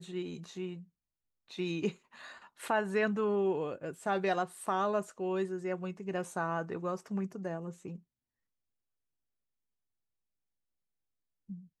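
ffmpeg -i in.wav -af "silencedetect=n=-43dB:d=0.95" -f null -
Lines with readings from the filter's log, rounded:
silence_start: 7.96
silence_end: 11.50 | silence_duration: 3.53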